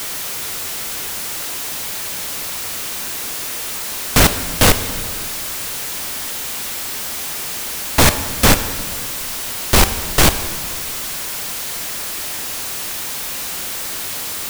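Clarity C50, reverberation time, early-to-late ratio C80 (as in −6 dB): 11.0 dB, 1.7 s, 12.5 dB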